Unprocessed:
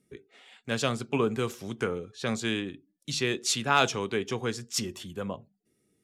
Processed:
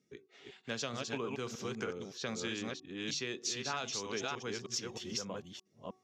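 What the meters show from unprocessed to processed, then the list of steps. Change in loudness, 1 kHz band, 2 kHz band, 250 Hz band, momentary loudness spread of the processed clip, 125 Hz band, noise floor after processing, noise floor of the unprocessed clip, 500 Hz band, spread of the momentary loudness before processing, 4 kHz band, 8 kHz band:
−9.0 dB, −12.0 dB, −9.0 dB, −9.5 dB, 13 LU, −11.5 dB, −74 dBFS, −74 dBFS, −9.5 dB, 13 LU, −6.5 dB, −5.5 dB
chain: delay that plays each chunk backwards 311 ms, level −3 dB
high-pass filter 150 Hz 6 dB per octave
high shelf with overshoot 7,600 Hz −8.5 dB, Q 3
downward compressor 6 to 1, threshold −30 dBFS, peak gain reduction 13 dB
hum removal 373.6 Hz, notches 3
level −4.5 dB

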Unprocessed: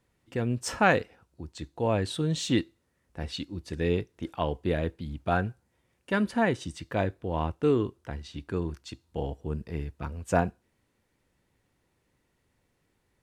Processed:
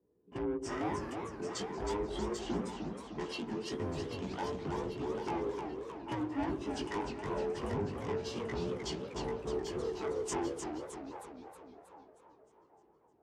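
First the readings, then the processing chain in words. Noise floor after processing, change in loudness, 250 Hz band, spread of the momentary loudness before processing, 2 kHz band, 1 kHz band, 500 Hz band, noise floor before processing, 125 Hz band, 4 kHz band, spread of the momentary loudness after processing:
−66 dBFS, −8.0 dB, −6.5 dB, 14 LU, −13.0 dB, −7.5 dB, −6.0 dB, −74 dBFS, −11.5 dB, −6.5 dB, 9 LU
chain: frequency inversion band by band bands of 500 Hz
hard clipping −20 dBFS, distortion −14 dB
downward compressor 2.5 to 1, threshold −30 dBFS, peak gain reduction 6 dB
treble cut that deepens with the level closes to 770 Hz, closed at −29 dBFS
soft clipping −33 dBFS, distortion −10 dB
chorus effect 0.34 Hz, delay 16.5 ms, depth 3.9 ms
parametric band 4,100 Hz −10.5 dB 0.22 octaves
on a send: echo with a time of its own for lows and highs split 590 Hz, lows 84 ms, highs 790 ms, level −7.5 dB
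on the sum: low-pass that shuts in the quiet parts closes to 420 Hz, open at −40 dBFS
high-pass filter 56 Hz
bass and treble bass −2 dB, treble +14 dB
feedback echo with a swinging delay time 311 ms, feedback 55%, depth 203 cents, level −6 dB
level +4 dB

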